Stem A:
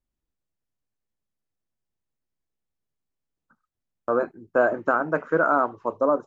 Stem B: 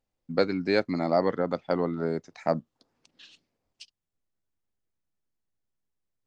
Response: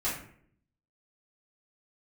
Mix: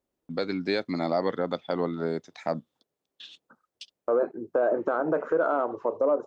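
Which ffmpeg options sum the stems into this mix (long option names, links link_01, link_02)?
-filter_complex "[0:a]acontrast=54,equalizer=frequency=480:width_type=o:width=1.8:gain=13.5,acompressor=threshold=-10dB:ratio=6,volume=-4.5dB[link_01];[1:a]agate=range=-28dB:threshold=-55dB:ratio=16:detection=peak,equalizer=frequency=3500:width_type=o:width=0.23:gain=12.5,volume=0.5dB[link_02];[link_01][link_02]amix=inputs=2:normalize=0,highpass=frequency=150:poles=1,alimiter=limit=-15.5dB:level=0:latency=1:release=84"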